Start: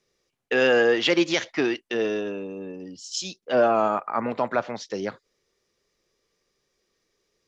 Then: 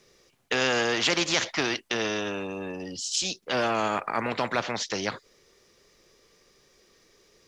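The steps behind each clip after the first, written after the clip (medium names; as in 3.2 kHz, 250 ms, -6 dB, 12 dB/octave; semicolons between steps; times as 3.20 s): spectrum-flattening compressor 2:1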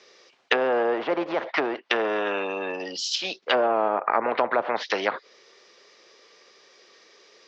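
low-pass 5.4 kHz 24 dB/octave; low-pass that closes with the level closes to 760 Hz, closed at -23 dBFS; high-pass 480 Hz 12 dB/octave; trim +9 dB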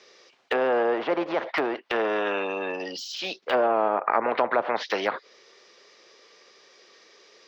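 de-esser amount 80%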